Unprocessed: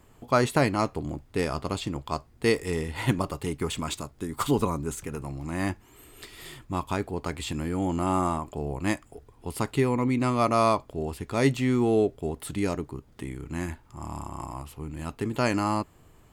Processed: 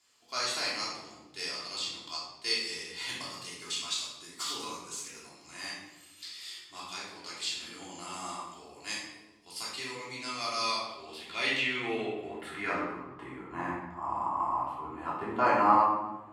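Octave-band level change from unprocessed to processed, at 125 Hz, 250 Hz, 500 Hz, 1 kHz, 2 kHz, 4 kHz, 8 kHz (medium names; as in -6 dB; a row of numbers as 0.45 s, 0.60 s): -21.0 dB, -13.5 dB, -10.5 dB, -0.5 dB, -0.5 dB, +5.0 dB, 0.0 dB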